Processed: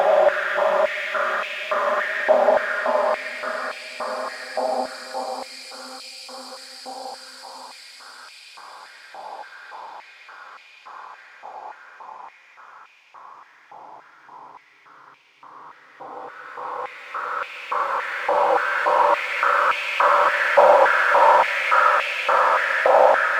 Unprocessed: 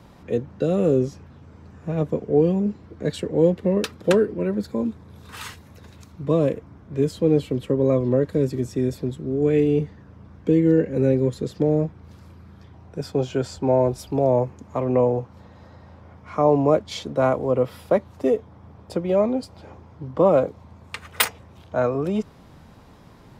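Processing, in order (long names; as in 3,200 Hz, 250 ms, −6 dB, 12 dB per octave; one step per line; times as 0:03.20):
hard clipping −15.5 dBFS, distortion −12 dB
extreme stretch with random phases 18×, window 0.50 s, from 0:19.12
high-pass on a step sequencer 3.5 Hz 800–2,500 Hz
level +5.5 dB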